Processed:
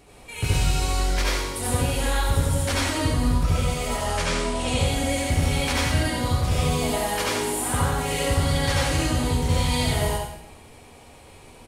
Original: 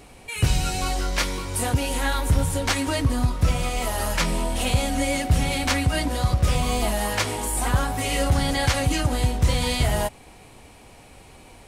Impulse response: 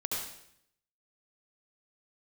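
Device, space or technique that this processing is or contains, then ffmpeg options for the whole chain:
bathroom: -filter_complex "[0:a]asettb=1/sr,asplit=3[a][b][c];[a]atrim=end=3.874[d];[b]atrim=start=3.87:end=4.79,asetpts=PTS-STARTPTS,afade=t=in:d=0.004:c=qsin,afade=t=out:st=0.916:d=0.004:c=qsin,lowpass=f=9.4k:w=0.5412,lowpass=f=9.4k:w=1.3066[e];[c]atrim=start=4.786[f];[d][e]acrossfade=d=0.004:c1=hsin:c2=qsin[g];[g][f]acrossfade=d=0.004:c1=qsin:c2=hsin,aecho=1:1:89:0.473[h];[1:a]atrim=start_sample=2205[i];[h][i]afir=irnorm=-1:irlink=0,volume=-5dB"

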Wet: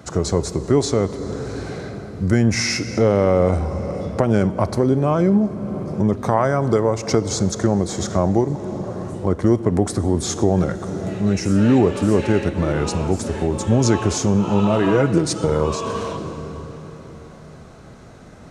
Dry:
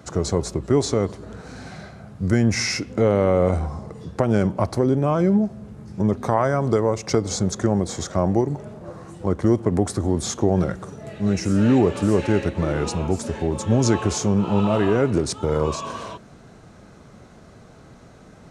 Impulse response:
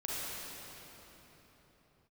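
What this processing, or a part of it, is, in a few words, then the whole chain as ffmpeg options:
ducked reverb: -filter_complex "[0:a]asplit=3[a][b][c];[1:a]atrim=start_sample=2205[d];[b][d]afir=irnorm=-1:irlink=0[e];[c]apad=whole_len=816164[f];[e][f]sidechaincompress=threshold=-26dB:ratio=8:attack=48:release=451,volume=-9.5dB[g];[a][g]amix=inputs=2:normalize=0,asettb=1/sr,asplit=3[h][i][j];[h]atrim=end=14.844[k];[i]atrim=start=14.84:end=15.47,asetpts=PTS-STARTPTS,afade=t=in:d=0.004:c=qsin,afade=t=out:st=0.626:d=0.004:c=qsin,aecho=1:1:6.2:0.64,atrim=end_sample=27783[l];[j]atrim=start=15.466[m];[k][l]acrossfade=d=0.004:c1=hsin:c2=qsin[n];[n][m]acrossfade=d=0.004:c1=qsin:c2=hsin,volume=1.5dB"

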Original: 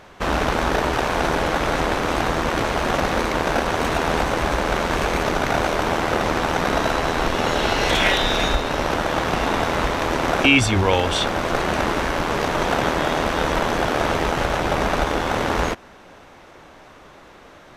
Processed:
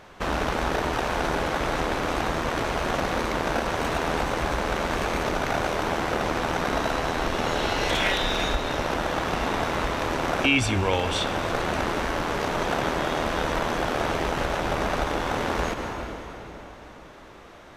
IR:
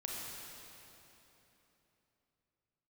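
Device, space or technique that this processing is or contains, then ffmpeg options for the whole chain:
ducked reverb: -filter_complex "[0:a]asplit=3[a][b][c];[1:a]atrim=start_sample=2205[d];[b][d]afir=irnorm=-1:irlink=0[e];[c]apad=whole_len=783459[f];[e][f]sidechaincompress=threshold=-29dB:ratio=8:attack=48:release=109,volume=-0.5dB[g];[a][g]amix=inputs=2:normalize=0,volume=-7dB"

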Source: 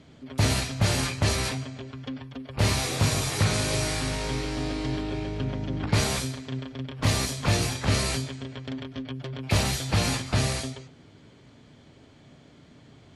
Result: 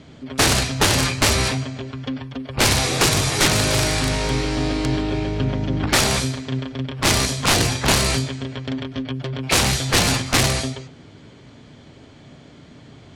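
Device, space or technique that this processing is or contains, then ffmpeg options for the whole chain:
overflowing digital effects unit: -af "aeval=exprs='(mod(7.94*val(0)+1,2)-1)/7.94':c=same,lowpass=9.8k,volume=8dB"

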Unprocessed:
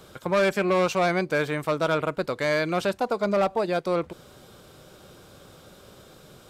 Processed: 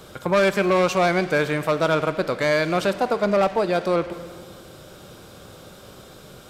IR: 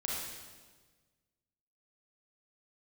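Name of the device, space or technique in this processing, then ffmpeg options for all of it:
saturated reverb return: -filter_complex "[0:a]asplit=2[a][b];[1:a]atrim=start_sample=2205[c];[b][c]afir=irnorm=-1:irlink=0,asoftclip=type=tanh:threshold=-26.5dB,volume=-7.5dB[d];[a][d]amix=inputs=2:normalize=0,volume=2.5dB"

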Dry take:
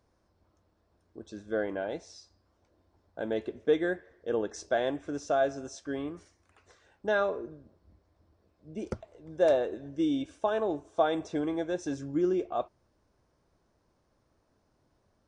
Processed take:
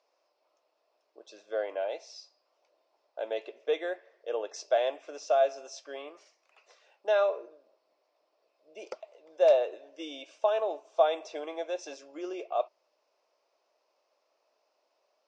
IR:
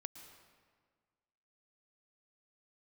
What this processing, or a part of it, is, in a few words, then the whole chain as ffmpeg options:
phone speaker on a table: -af "highpass=f=490:w=0.5412,highpass=f=490:w=1.3066,equalizer=f=610:t=q:w=4:g=5,equalizer=f=1.6k:t=q:w=4:g=-7,equalizer=f=2.6k:t=q:w=4:g=8,equalizer=f=4.9k:t=q:w=4:g=5,lowpass=f=6.8k:w=0.5412,lowpass=f=6.8k:w=1.3066"

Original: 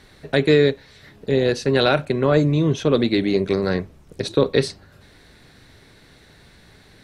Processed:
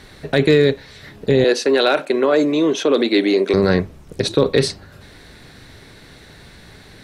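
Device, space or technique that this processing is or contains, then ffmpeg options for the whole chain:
clipper into limiter: -filter_complex "[0:a]asoftclip=type=hard:threshold=-6dB,alimiter=limit=-11.5dB:level=0:latency=1:release=33,asettb=1/sr,asplit=3[a][b][c];[a]atrim=end=1.444[d];[b]atrim=start=1.44:end=3.54,asetpts=PTS-STARTPTS,afade=t=in:d=0.004:c=qsin,afade=t=out:st=2.096:d=0.004:c=qsin,highpass=f=280:w=0.5412,highpass=f=280:w=1.3066[e];[c]atrim=start=3.536[f];[d][e]acrossfade=d=0.004:c1=hsin:c2=qsin[g];[g][f]acrossfade=d=0.004:c1=qsin:c2=hsin,volume=7dB"

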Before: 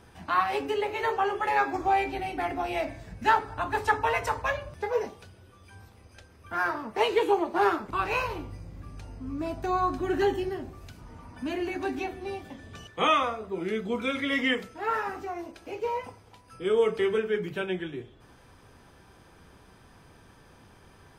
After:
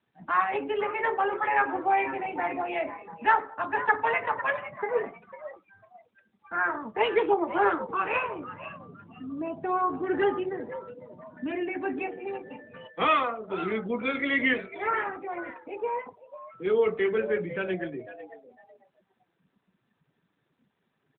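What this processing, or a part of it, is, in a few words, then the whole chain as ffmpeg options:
mobile call with aggressive noise cancelling: -filter_complex "[0:a]bandreject=f=3.1k:w=28,asplit=3[a][b][c];[a]afade=t=out:st=2.65:d=0.02[d];[b]highpass=210,afade=t=in:st=2.65:d=0.02,afade=t=out:st=3.57:d=0.02[e];[c]afade=t=in:st=3.57:d=0.02[f];[d][e][f]amix=inputs=3:normalize=0,equalizer=f=1.9k:t=o:w=0.62:g=4,asplit=4[g][h][i][j];[h]adelay=499,afreqshift=120,volume=-13dB[k];[i]adelay=998,afreqshift=240,volume=-22.9dB[l];[j]adelay=1497,afreqshift=360,volume=-32.8dB[m];[g][k][l][m]amix=inputs=4:normalize=0,highpass=f=130:w=0.5412,highpass=f=130:w=1.3066,afftdn=nr=21:nf=-41" -ar 8000 -c:a libopencore_amrnb -b:a 12200

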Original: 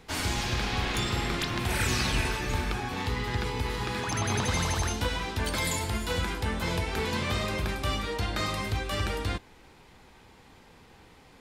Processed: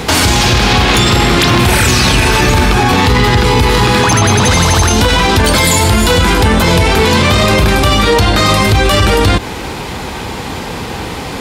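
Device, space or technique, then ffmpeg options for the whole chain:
mastering chain: -af "highpass=47,equalizer=f=1.9k:t=o:w=0.77:g=-2.5,acompressor=threshold=-31dB:ratio=2.5,asoftclip=type=tanh:threshold=-22.5dB,alimiter=level_in=34.5dB:limit=-1dB:release=50:level=0:latency=1,volume=-1dB"

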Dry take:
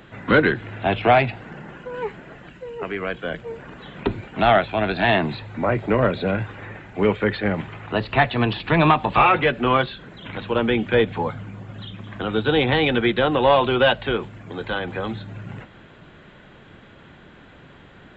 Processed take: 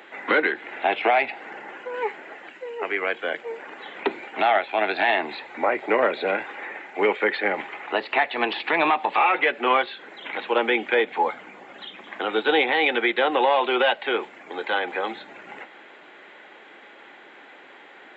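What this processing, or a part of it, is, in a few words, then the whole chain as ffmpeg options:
laptop speaker: -af "highpass=f=320:w=0.5412,highpass=f=320:w=1.3066,equalizer=f=820:t=o:w=0.22:g=8,equalizer=f=2.1k:t=o:w=0.52:g=8,alimiter=limit=-9.5dB:level=0:latency=1:release=283"

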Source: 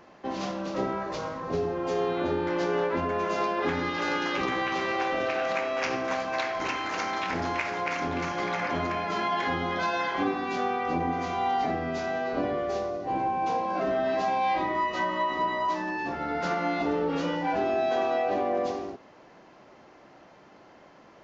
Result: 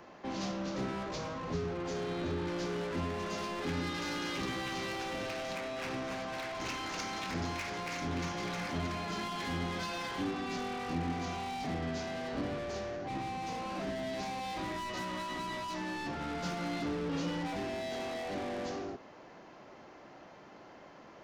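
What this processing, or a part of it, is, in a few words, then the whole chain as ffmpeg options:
one-band saturation: -filter_complex "[0:a]asettb=1/sr,asplit=3[a][b][c];[a]atrim=end=5.554[d];[b]atrim=start=5.55:end=6.56,asetpts=PTS-STARTPTS,afade=t=in:d=0.004:c=qsin,afade=t=out:st=1.006:d=0.004:c=qsin,acrossover=split=3000[e][f];[f]acompressor=threshold=-51dB:ratio=4:attack=1:release=60[g];[e][g]amix=inputs=2:normalize=0[h];[c]atrim=start=6.556[i];[d][h]acrossfade=d=0.004:c1=hsin:c2=qsin[j];[j][i]acrossfade=d=0.004:c1=qsin:c2=hsin,acrossover=split=240|3700[k][l][m];[l]asoftclip=type=tanh:threshold=-39dB[n];[k][n][m]amix=inputs=3:normalize=0"

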